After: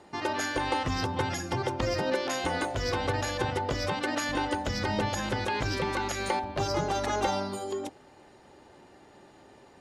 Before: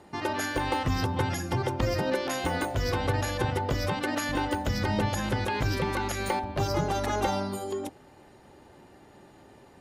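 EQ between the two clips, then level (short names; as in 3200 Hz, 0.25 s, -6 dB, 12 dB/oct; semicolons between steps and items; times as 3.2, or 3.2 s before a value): LPF 7700 Hz 12 dB/oct; tone controls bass -5 dB, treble +3 dB; 0.0 dB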